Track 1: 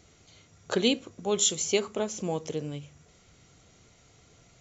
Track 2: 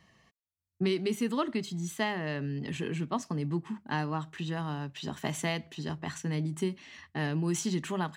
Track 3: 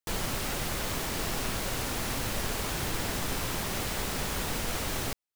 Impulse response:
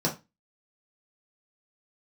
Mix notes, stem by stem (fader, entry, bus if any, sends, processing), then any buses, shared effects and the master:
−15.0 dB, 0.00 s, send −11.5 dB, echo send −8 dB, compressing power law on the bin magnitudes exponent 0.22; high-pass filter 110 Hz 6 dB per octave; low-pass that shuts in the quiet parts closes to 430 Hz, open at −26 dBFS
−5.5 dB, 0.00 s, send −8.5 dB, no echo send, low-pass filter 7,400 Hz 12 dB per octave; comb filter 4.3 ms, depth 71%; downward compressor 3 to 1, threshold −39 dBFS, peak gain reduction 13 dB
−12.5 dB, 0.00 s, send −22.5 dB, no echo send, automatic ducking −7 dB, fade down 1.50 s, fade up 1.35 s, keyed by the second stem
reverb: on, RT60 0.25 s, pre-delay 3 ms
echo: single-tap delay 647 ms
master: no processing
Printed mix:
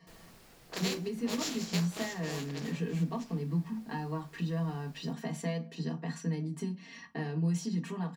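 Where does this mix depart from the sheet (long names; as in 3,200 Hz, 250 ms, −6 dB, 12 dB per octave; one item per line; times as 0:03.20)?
stem 2: missing low-pass filter 7,400 Hz 12 dB per octave
stem 3 −12.5 dB → −24.0 dB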